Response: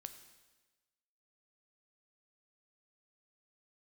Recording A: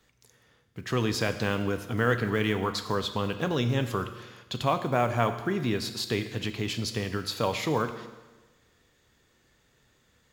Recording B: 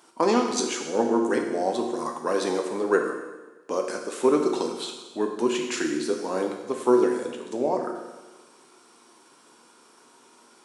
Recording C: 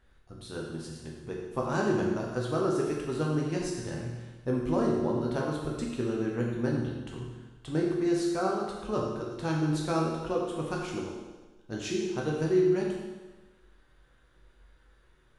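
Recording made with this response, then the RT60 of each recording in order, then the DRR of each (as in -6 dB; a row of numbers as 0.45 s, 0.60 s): A; 1.2 s, 1.2 s, 1.2 s; 8.0 dB, 2.0 dB, -2.5 dB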